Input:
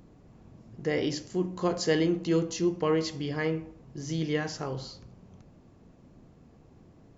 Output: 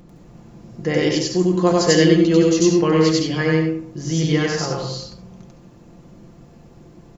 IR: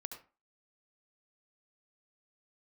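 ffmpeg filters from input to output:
-filter_complex "[0:a]aecho=1:1:5.8:0.46,asplit=2[s0][s1];[s1]highshelf=f=5200:g=10.5[s2];[1:a]atrim=start_sample=2205,adelay=94[s3];[s2][s3]afir=irnorm=-1:irlink=0,volume=1.33[s4];[s0][s4]amix=inputs=2:normalize=0,volume=2.24"

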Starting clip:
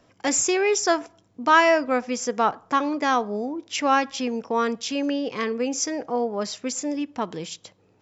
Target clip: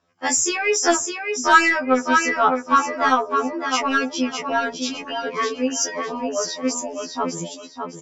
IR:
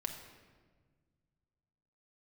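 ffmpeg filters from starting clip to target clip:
-filter_complex "[0:a]afftdn=nr=13:nf=-34,lowpass=6200,equalizer=f=1300:t=o:w=0.62:g=5.5,aecho=1:1:607|1214|1821|2428:0.501|0.14|0.0393|0.011,crystalizer=i=1.5:c=0,asplit=2[s0][s1];[s1]acontrast=61,volume=1.26[s2];[s0][s2]amix=inputs=2:normalize=0,afftfilt=real='re*2*eq(mod(b,4),0)':imag='im*2*eq(mod(b,4),0)':win_size=2048:overlap=0.75,volume=0.447"

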